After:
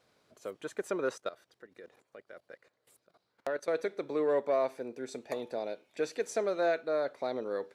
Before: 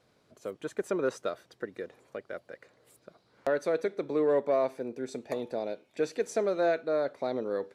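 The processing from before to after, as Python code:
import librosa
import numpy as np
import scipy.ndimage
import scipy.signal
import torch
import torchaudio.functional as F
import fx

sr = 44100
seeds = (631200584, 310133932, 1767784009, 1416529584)

y = fx.low_shelf(x, sr, hz=380.0, db=-7.5)
y = fx.level_steps(y, sr, step_db=16, at=(1.13, 3.68))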